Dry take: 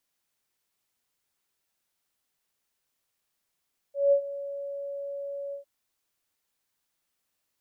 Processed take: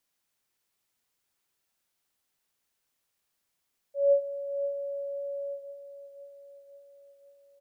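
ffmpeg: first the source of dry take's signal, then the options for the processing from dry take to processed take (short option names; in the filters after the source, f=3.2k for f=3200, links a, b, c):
-f lavfi -i "aevalsrc='0.158*sin(2*PI*562*t)':d=1.703:s=44100,afade=t=in:d=0.18,afade=t=out:st=0.18:d=0.087:silence=0.15,afade=t=out:st=1.59:d=0.113"
-af "aecho=1:1:527|1054|1581|2108|2635|3162:0.224|0.132|0.0779|0.046|0.0271|0.016"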